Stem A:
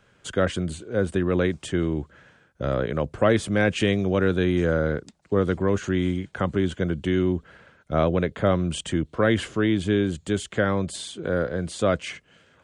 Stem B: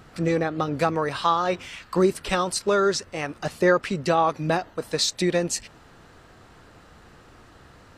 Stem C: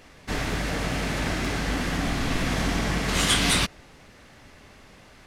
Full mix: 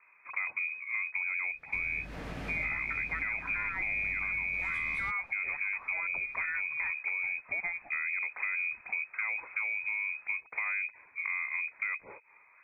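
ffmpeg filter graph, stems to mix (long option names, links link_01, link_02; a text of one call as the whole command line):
ffmpeg -i stem1.wav -i stem2.wav -i stem3.wav -filter_complex "[0:a]lowpass=1300,volume=-0.5dB,asplit=2[link_01][link_02];[1:a]asoftclip=type=tanh:threshold=-11.5dB,adelay=2300,volume=-5.5dB[link_03];[2:a]equalizer=frequency=8400:width_type=o:width=2.2:gain=-10.5,acompressor=threshold=-29dB:ratio=2,adelay=1450,volume=-8.5dB[link_04];[link_02]apad=whole_len=296149[link_05];[link_04][link_05]sidechaincompress=threshold=-24dB:ratio=8:attack=27:release=923[link_06];[link_01][link_03]amix=inputs=2:normalize=0,lowpass=frequency=2200:width_type=q:width=0.5098,lowpass=frequency=2200:width_type=q:width=0.6013,lowpass=frequency=2200:width_type=q:width=0.9,lowpass=frequency=2200:width_type=q:width=2.563,afreqshift=-2600,alimiter=limit=-17.5dB:level=0:latency=1:release=54,volume=0dB[link_07];[link_06][link_07]amix=inputs=2:normalize=0,acrossover=split=120[link_08][link_09];[link_09]acompressor=threshold=-32dB:ratio=4[link_10];[link_08][link_10]amix=inputs=2:normalize=0" out.wav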